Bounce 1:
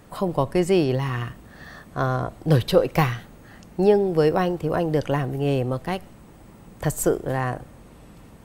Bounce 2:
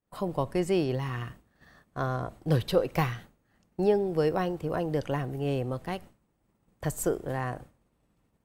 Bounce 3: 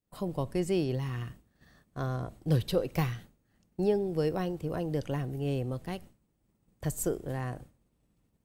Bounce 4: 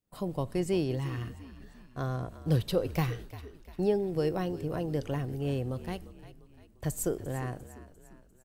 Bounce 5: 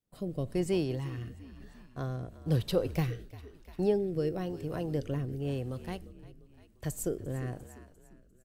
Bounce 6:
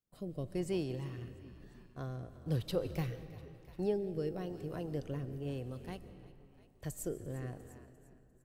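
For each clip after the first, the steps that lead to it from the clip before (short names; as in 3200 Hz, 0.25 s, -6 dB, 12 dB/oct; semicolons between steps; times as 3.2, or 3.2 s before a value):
expander -34 dBFS; gain -7 dB
bell 1100 Hz -7.5 dB 2.6 oct
frequency-shifting echo 0.348 s, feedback 50%, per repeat -50 Hz, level -15.5 dB
rotary speaker horn 1 Hz
digital reverb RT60 2.6 s, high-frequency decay 0.65×, pre-delay 95 ms, DRR 13.5 dB; gain -6 dB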